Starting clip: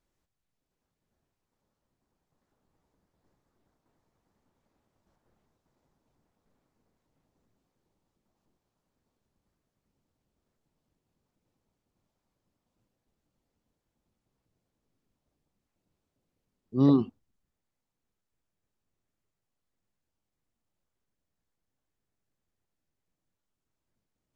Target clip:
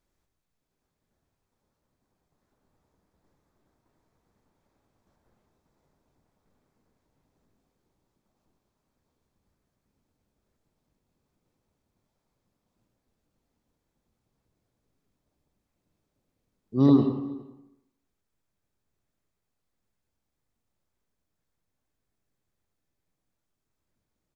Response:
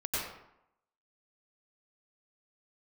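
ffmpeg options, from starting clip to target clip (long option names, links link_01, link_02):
-filter_complex "[0:a]bandreject=frequency=2900:width=21,asplit=2[link_01][link_02];[link_02]adelay=408.2,volume=-23dB,highshelf=frequency=4000:gain=-9.18[link_03];[link_01][link_03]amix=inputs=2:normalize=0,asplit=2[link_04][link_05];[1:a]atrim=start_sample=2205[link_06];[link_05][link_06]afir=irnorm=-1:irlink=0,volume=-9.5dB[link_07];[link_04][link_07]amix=inputs=2:normalize=0"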